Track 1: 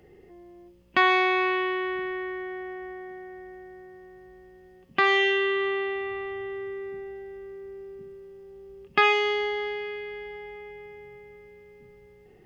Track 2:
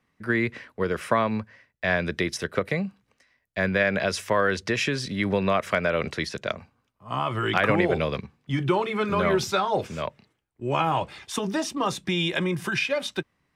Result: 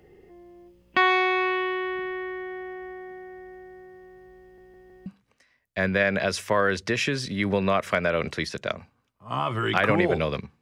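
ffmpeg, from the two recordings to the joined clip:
-filter_complex "[0:a]apad=whole_dur=10.61,atrim=end=10.61,asplit=4[s0][s1][s2][s3];[s0]atrim=end=4.582[s4];[s1]atrim=start=4.418:end=4.582[s5];[s2]atrim=start=4.418:end=4.582[s6];[s3]atrim=start=4.418:end=4.582[s7];[1:a]atrim=start=2.858:end=8.41[s8];[s4][s5]acrossfade=d=0.004:c1=hsin:c2=hsin[s9];[s9][s6]acrossfade=d=0.004:c1=hsin:c2=hsin[s10];[s10][s7]acrossfade=d=0.004:c1=hsin:c2=hsin[s11];[s11][s8]acrossfade=d=0.004:c1=hsin:c2=hsin"

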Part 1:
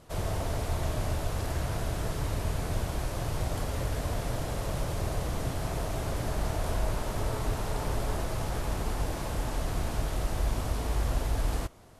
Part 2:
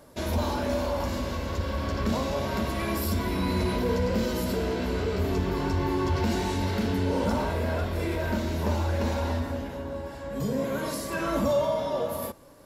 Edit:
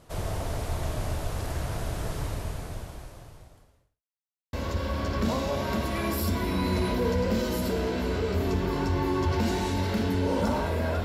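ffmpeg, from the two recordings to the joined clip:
-filter_complex "[0:a]apad=whole_dur=11.04,atrim=end=11.04,asplit=2[s0][s1];[s0]atrim=end=4.03,asetpts=PTS-STARTPTS,afade=t=out:st=2.21:d=1.82:c=qua[s2];[s1]atrim=start=4.03:end=4.53,asetpts=PTS-STARTPTS,volume=0[s3];[1:a]atrim=start=1.37:end=7.88,asetpts=PTS-STARTPTS,afade=t=in:d=0.004:c=hsin[s4];[s2][s3][s4]concat=n=3:v=0:a=1"

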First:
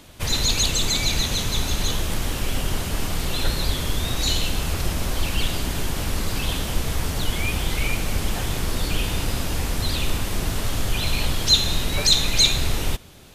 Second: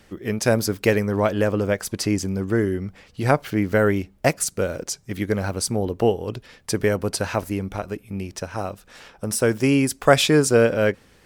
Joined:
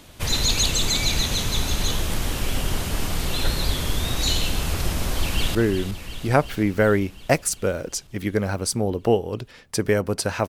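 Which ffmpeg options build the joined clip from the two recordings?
-filter_complex "[0:a]apad=whole_dur=10.48,atrim=end=10.48,atrim=end=5.552[s0];[1:a]atrim=start=2.498:end=7.43[s1];[s0][s1]acrossfade=d=0.004:c1=hsin:c2=hsin,asplit=2[s2][s3];[s3]afade=t=in:st=5.19:d=0.01,afade=t=out:st=5.55:d=0.01,aecho=0:1:360|720|1080|1440|1800|2160|2520|2880|3240|3600|3960:0.354813|0.248369|0.173859|0.121701|0.0851907|0.0596335|0.0417434|0.0292204|0.0204543|0.014318|0.0100226[s4];[s2][s4]amix=inputs=2:normalize=0"

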